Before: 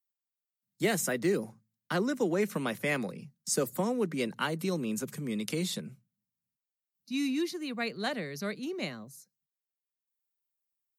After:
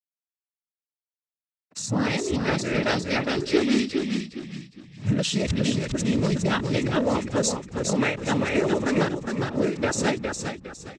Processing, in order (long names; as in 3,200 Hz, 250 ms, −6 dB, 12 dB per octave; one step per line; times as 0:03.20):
played backwards from end to start
camcorder AGC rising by 15 dB per second
low-pass that shuts in the quiet parts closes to 1,200 Hz, open at −24.5 dBFS
in parallel at +1 dB: output level in coarse steps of 24 dB
on the sum: dead-zone distortion −49.5 dBFS
cochlear-implant simulation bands 12
on a send: echo with shifted repeats 409 ms, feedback 33%, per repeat −36 Hz, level −4.5 dB
on the sum: every ending faded ahead of time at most 140 dB per second
level +6 dB